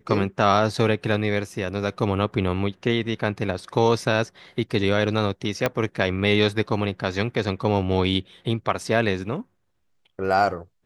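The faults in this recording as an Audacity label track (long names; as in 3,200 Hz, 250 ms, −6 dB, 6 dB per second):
5.660000	5.660000	click −7 dBFS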